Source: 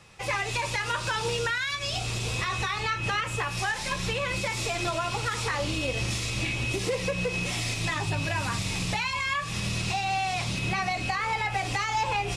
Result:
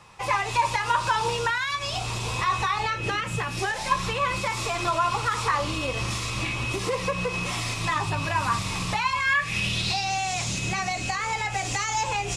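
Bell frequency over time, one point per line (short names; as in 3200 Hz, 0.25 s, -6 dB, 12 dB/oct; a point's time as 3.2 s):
bell +12 dB 0.55 oct
2.76 s 990 Hz
3.38 s 150 Hz
3.93 s 1100 Hz
9.07 s 1100 Hz
10.2 s 6900 Hz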